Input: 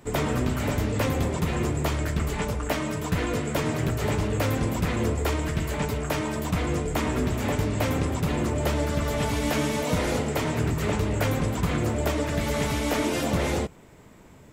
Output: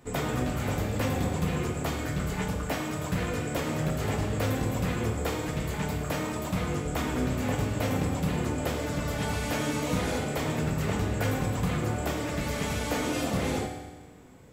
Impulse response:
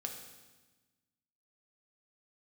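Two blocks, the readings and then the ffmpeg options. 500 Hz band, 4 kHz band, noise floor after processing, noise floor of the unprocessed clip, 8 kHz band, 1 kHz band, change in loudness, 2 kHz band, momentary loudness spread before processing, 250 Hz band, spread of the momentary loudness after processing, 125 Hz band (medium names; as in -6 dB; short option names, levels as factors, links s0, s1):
-4.0 dB, -3.0 dB, -42 dBFS, -49 dBFS, -2.5 dB, -3.0 dB, -3.5 dB, -3.0 dB, 3 LU, -3.0 dB, 3 LU, -3.0 dB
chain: -filter_complex "[1:a]atrim=start_sample=2205[s0];[0:a][s0]afir=irnorm=-1:irlink=0,volume=0.794"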